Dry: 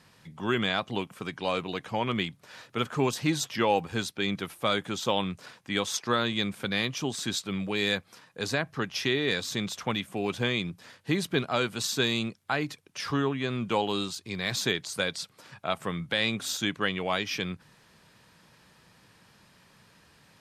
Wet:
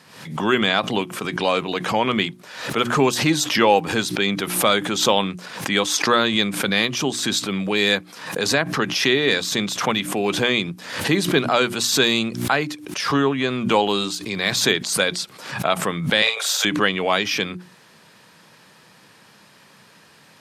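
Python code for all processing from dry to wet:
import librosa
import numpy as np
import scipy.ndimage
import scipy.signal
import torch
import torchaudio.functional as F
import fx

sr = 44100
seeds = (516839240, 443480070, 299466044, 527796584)

y = fx.chain(x, sr, fx.steep_highpass(hz=440.0, slope=96),
    fx.doubler(ms=45.0, db=-5.5),
    fx.band_squash(depth_pct=40), at=(16.22, 16.65))
y = scipy.signal.sosfilt(scipy.signal.butter(2, 160.0, 'highpass', fs=sr, output='sos'), y)
y = fx.hum_notches(y, sr, base_hz=60, count=6)
y = fx.pre_swell(y, sr, db_per_s=77.0)
y = y * 10.0 ** (9.0 / 20.0)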